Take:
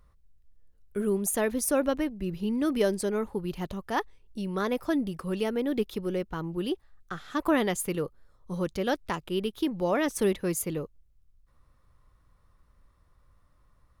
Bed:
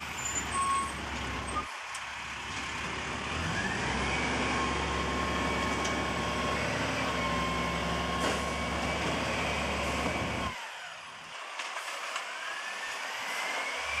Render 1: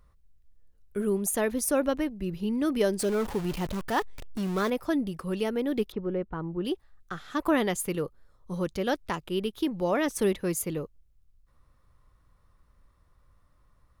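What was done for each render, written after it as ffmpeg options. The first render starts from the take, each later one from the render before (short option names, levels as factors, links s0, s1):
-filter_complex "[0:a]asettb=1/sr,asplit=3[s0][s1][s2];[s0]atrim=end=2.994[s3];[s1]atrim=start=2.99:end=4.7,asetpts=PTS-STARTPTS,afade=t=in:d=0.004:c=qsin,afade=t=out:st=1.706:d=0.004:c=qsin,aeval=exprs='val(0)+0.5*0.0224*sgn(val(0))':c=same[s4];[s2]atrim=start=4.696[s5];[s3][s4]acrossfade=d=0.004:c1=hsin:c2=qsin[s6];[s6][s5]acrossfade=d=0.004:c1=qsin:c2=hsin,asettb=1/sr,asplit=3[s7][s8][s9];[s7]atrim=end=5.924[s10];[s8]atrim=start=5.92:end=6.65,asetpts=PTS-STARTPTS,afade=t=in:d=0.004:c=qsin,afade=t=out:st=0.726:d=0.004:c=qsin,lowpass=1600[s11];[s9]atrim=start=6.646[s12];[s10][s11]acrossfade=d=0.004:c1=hsin:c2=qsin[s13];[s13][s12]acrossfade=d=0.004:c1=qsin:c2=hsin"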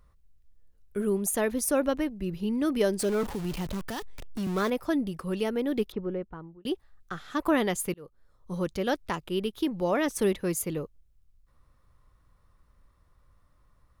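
-filter_complex "[0:a]asettb=1/sr,asplit=3[s0][s1][s2];[s0]atrim=end=3.234[s3];[s1]atrim=start=3.23:end=4.47,asetpts=PTS-STARTPTS,afade=t=in:d=0.004:c=qsin,afade=t=out:st=1.236:d=0.004:c=qsin,acrossover=split=230|3000[s4][s5][s6];[s5]acompressor=threshold=0.02:ratio=6:attack=3.2:release=140:knee=2.83:detection=peak[s7];[s4][s7][s6]amix=inputs=3:normalize=0[s8];[s2]atrim=start=4.466[s9];[s3][s8]acrossfade=d=0.004:c1=hsin:c2=qsin[s10];[s10][s9]acrossfade=d=0.004:c1=qsin:c2=hsin,asplit=3[s11][s12][s13];[s11]atrim=end=6.65,asetpts=PTS-STARTPTS,afade=t=out:st=5.99:d=0.66[s14];[s12]atrim=start=6.65:end=7.94,asetpts=PTS-STARTPTS,afade=t=in:d=0.004:c=hsin,afade=t=out:st=1.286:d=0.004:c=hsin[s15];[s13]atrim=start=7.94,asetpts=PTS-STARTPTS,afade=t=in:d=0.7:c=qsin[s16];[s14][s15][s16]concat=n=3:v=0:a=1"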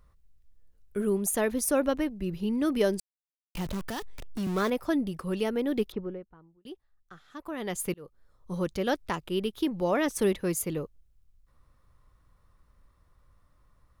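-filter_complex "[0:a]asplit=5[s0][s1][s2][s3][s4];[s0]atrim=end=3,asetpts=PTS-STARTPTS,afade=t=out:st=2.996:d=0.004:c=hsin[s5];[s1]atrim=start=3:end=3.55,asetpts=PTS-STARTPTS,volume=0[s6];[s2]atrim=start=3.55:end=6.26,asetpts=PTS-STARTPTS,afade=t=in:d=0.004:c=hsin,afade=t=out:st=2.4:d=0.31:silence=0.223872[s7];[s3]atrim=start=6.26:end=7.56,asetpts=PTS-STARTPTS,volume=0.224[s8];[s4]atrim=start=7.56,asetpts=PTS-STARTPTS,afade=t=in:d=0.31:silence=0.223872[s9];[s5][s6][s7][s8][s9]concat=n=5:v=0:a=1"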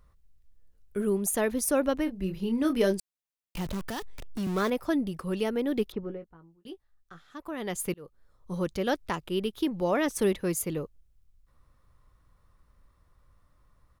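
-filter_complex "[0:a]asplit=3[s0][s1][s2];[s0]afade=t=out:st=2.06:d=0.02[s3];[s1]asplit=2[s4][s5];[s5]adelay=26,volume=0.422[s6];[s4][s6]amix=inputs=2:normalize=0,afade=t=in:st=2.06:d=0.02,afade=t=out:st=2.92:d=0.02[s7];[s2]afade=t=in:st=2.92:d=0.02[s8];[s3][s7][s8]amix=inputs=3:normalize=0,asettb=1/sr,asplit=3[s9][s10][s11];[s9]atrim=end=6.014[s12];[s10]atrim=start=6.01:end=7.24,asetpts=PTS-STARTPTS,afade=t=in:d=0.004:c=qsin,afade=t=out:st=1.226:d=0.004:c=qsin,asplit=2[s13][s14];[s14]adelay=18,volume=0.376[s15];[s13][s15]amix=inputs=2:normalize=0,atrim=end_sample=54243[s16];[s11]atrim=start=7.236[s17];[s12][s16]acrossfade=d=0.004:c1=hsin:c2=qsin[s18];[s18][s17]acrossfade=d=0.004:c1=qsin:c2=hsin"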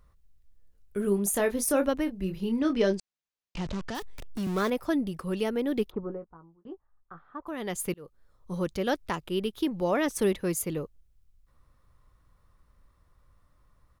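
-filter_complex "[0:a]asettb=1/sr,asplit=3[s0][s1][s2];[s0]atrim=end=1.024[s3];[s1]atrim=start=1.02:end=1.89,asetpts=PTS-STARTPTS,afade=t=in:d=0.004:c=qsin,afade=t=out:st=0.866:d=0.004:c=qsin,asplit=2[s4][s5];[s5]adelay=25,volume=0.398[s6];[s4][s6]amix=inputs=2:normalize=0,atrim=end_sample=38367[s7];[s2]atrim=start=1.886[s8];[s3][s7]acrossfade=d=0.004:c1=hsin:c2=qsin[s9];[s9][s8]acrossfade=d=0.004:c1=qsin:c2=hsin,asettb=1/sr,asplit=3[s10][s11][s12];[s10]atrim=end=2.594[s13];[s11]atrim=start=2.59:end=3.95,asetpts=PTS-STARTPTS,afade=t=in:d=0.004:c=qsin,afade=t=out:st=1.356:d=0.004:c=qsin,lowpass=f=6800:w=0.5412,lowpass=f=6800:w=1.3066[s14];[s12]atrim=start=3.946[s15];[s13][s14]acrossfade=d=0.004:c1=hsin:c2=qsin[s16];[s16][s15]acrossfade=d=0.004:c1=qsin:c2=hsin,asplit=3[s17][s18][s19];[s17]afade=t=out:st=5.89:d=0.02[s20];[s18]lowpass=f=1100:t=q:w=2.2,afade=t=in:st=5.89:d=0.02,afade=t=out:st=7.46:d=0.02[s21];[s19]afade=t=in:st=7.46:d=0.02[s22];[s20][s21][s22]amix=inputs=3:normalize=0"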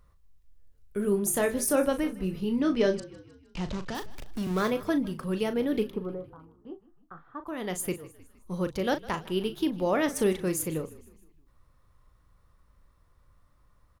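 -filter_complex "[0:a]asplit=2[s0][s1];[s1]adelay=38,volume=0.299[s2];[s0][s2]amix=inputs=2:normalize=0,asplit=5[s3][s4][s5][s6][s7];[s4]adelay=155,afreqshift=-41,volume=0.106[s8];[s5]adelay=310,afreqshift=-82,volume=0.055[s9];[s6]adelay=465,afreqshift=-123,volume=0.0285[s10];[s7]adelay=620,afreqshift=-164,volume=0.015[s11];[s3][s8][s9][s10][s11]amix=inputs=5:normalize=0"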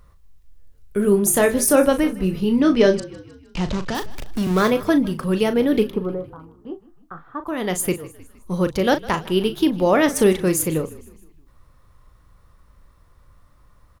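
-af "volume=2.99"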